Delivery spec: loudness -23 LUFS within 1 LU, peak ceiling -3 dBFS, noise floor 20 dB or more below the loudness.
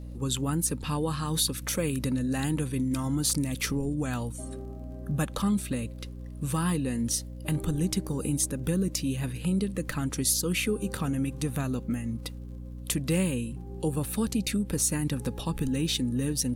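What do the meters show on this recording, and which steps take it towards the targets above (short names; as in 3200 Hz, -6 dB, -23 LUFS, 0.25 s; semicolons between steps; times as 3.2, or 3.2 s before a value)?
ticks 39/s; hum 60 Hz; harmonics up to 300 Hz; hum level -37 dBFS; loudness -29.0 LUFS; peak -12.5 dBFS; loudness target -23.0 LUFS
-> de-click; de-hum 60 Hz, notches 5; gain +6 dB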